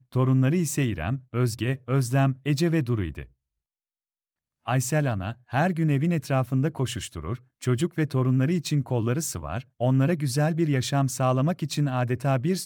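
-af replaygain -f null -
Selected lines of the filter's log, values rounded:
track_gain = +7.4 dB
track_peak = 0.198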